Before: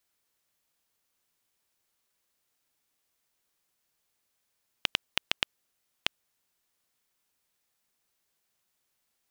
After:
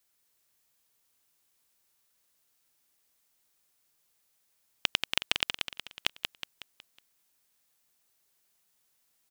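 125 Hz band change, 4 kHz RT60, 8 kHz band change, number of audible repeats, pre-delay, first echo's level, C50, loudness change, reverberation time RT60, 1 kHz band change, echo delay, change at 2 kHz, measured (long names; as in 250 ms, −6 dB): +1.0 dB, no reverb audible, +5.0 dB, 5, no reverb audible, −5.5 dB, no reverb audible, +1.0 dB, no reverb audible, +1.5 dB, 184 ms, +2.0 dB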